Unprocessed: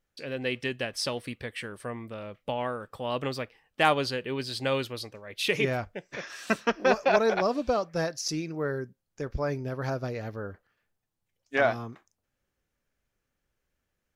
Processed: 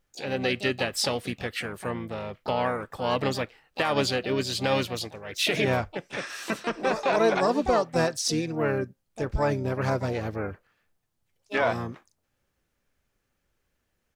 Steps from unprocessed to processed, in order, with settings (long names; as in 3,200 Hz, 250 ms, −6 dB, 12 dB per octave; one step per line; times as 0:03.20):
brickwall limiter −18.5 dBFS, peak gain reduction 11.5 dB
pitch-shifted copies added −5 semitones −11 dB, +7 semitones −9 dB
level +4 dB